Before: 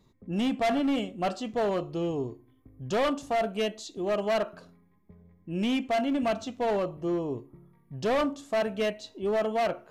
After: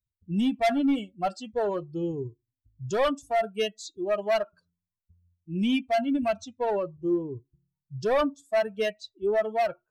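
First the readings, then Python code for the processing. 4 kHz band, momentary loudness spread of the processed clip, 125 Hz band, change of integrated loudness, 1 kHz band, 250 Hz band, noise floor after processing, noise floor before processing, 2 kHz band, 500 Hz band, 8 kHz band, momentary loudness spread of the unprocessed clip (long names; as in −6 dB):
0.0 dB, 9 LU, +0.5 dB, +1.5 dB, +1.0 dB, +1.0 dB, below −85 dBFS, −64 dBFS, +0.5 dB, +1.5 dB, 0.0 dB, 8 LU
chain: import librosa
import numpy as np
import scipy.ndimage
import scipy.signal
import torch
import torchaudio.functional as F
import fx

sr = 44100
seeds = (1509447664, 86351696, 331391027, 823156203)

y = fx.bin_expand(x, sr, power=2.0)
y = F.gain(torch.from_numpy(y), 5.0).numpy()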